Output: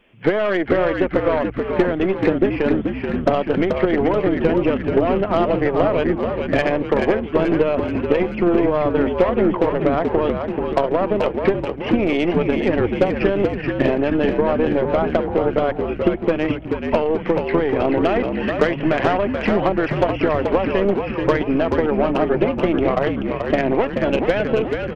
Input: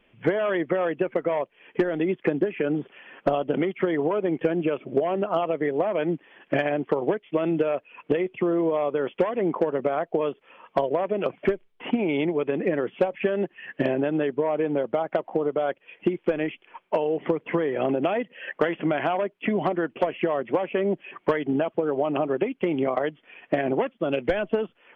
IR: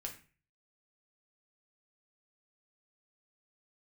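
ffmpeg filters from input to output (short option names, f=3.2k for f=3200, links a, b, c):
-filter_complex "[0:a]aeval=exprs='0.282*(cos(1*acos(clip(val(0)/0.282,-1,1)))-cos(1*PI/2))+0.02*(cos(6*acos(clip(val(0)/0.282,-1,1)))-cos(6*PI/2))':c=same,asplit=9[a][b][c][d][e][f][g][h][i];[b]adelay=432,afreqshift=-62,volume=-5dB[j];[c]adelay=864,afreqshift=-124,volume=-9.7dB[k];[d]adelay=1296,afreqshift=-186,volume=-14.5dB[l];[e]adelay=1728,afreqshift=-248,volume=-19.2dB[m];[f]adelay=2160,afreqshift=-310,volume=-23.9dB[n];[g]adelay=2592,afreqshift=-372,volume=-28.7dB[o];[h]adelay=3024,afreqshift=-434,volume=-33.4dB[p];[i]adelay=3456,afreqshift=-496,volume=-38.1dB[q];[a][j][k][l][m][n][o][p][q]amix=inputs=9:normalize=0,volume=5dB"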